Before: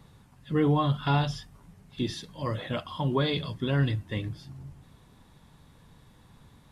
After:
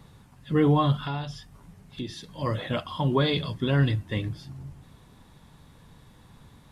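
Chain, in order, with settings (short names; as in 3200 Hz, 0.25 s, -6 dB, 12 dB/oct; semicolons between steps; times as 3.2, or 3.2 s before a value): 1.04–2.32 compressor 2:1, threshold -40 dBFS, peak gain reduction 10.5 dB; gain +3 dB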